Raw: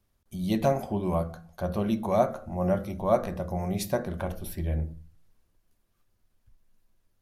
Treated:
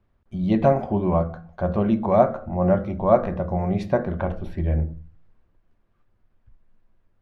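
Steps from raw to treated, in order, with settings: low-pass 2 kHz 12 dB/octave; trim +6.5 dB

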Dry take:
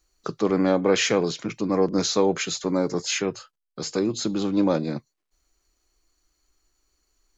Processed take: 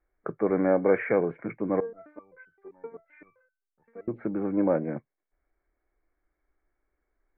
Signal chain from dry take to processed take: rippled Chebyshev low-pass 2.3 kHz, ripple 6 dB; 1.80–4.08 s: resonator arpeggio 7.7 Hz 230–1500 Hz

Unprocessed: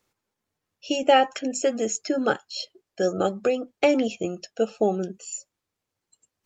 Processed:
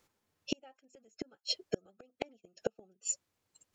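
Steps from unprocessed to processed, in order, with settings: time stretch by phase-locked vocoder 0.58×; inverted gate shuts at -21 dBFS, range -41 dB; trim +3.5 dB

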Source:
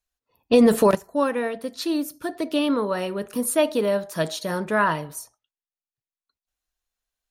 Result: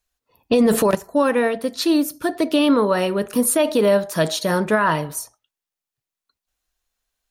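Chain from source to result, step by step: peak limiter -15.5 dBFS, peak gain reduction 9 dB; trim +7 dB

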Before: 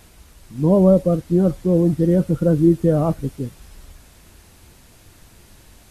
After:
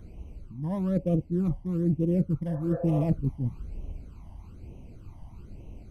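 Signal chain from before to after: local Wiener filter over 25 samples; spectral replace 2.53–3.03 s, 450–1800 Hz both; reverse; compression 10:1, threshold -26 dBFS, peak gain reduction 17.5 dB; reverse; phase shifter stages 12, 1.1 Hz, lowest notch 420–1500 Hz; trim +4.5 dB

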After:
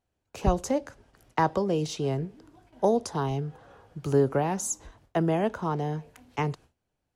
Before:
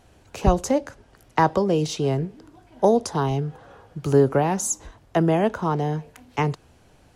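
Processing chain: gate with hold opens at -42 dBFS; trim -5.5 dB

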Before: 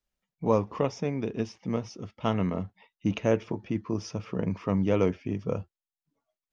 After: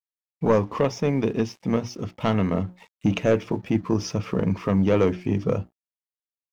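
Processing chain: recorder AGC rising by 8.8 dB/s; saturation -17 dBFS, distortion -15 dB; hum notches 60/120/180/240/300/360 Hz; crossover distortion -59.5 dBFS; trim +7 dB

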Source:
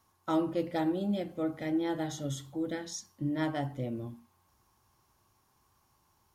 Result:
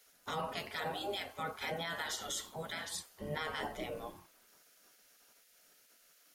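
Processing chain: spectral gate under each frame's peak -15 dB weak; 0.47–2.94 s: bass shelf 310 Hz -8.5 dB; peak limiter -38.5 dBFS, peak gain reduction 11 dB; trim +10 dB

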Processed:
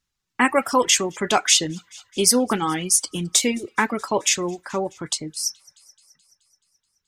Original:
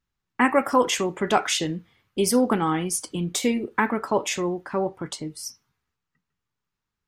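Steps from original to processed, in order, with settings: peaking EQ 6.5 kHz +11 dB 2.4 oct; feedback echo behind a high-pass 214 ms, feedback 64%, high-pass 1.8 kHz, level -22 dB; reverb removal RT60 0.51 s

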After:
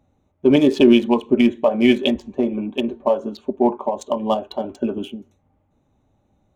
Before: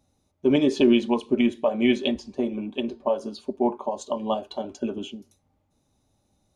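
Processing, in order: local Wiener filter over 9 samples; trim +6 dB

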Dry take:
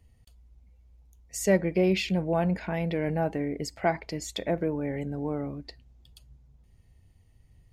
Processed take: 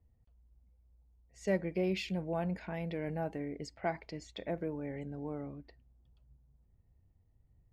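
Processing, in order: level-controlled noise filter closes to 1.1 kHz, open at -25 dBFS; trim -9 dB

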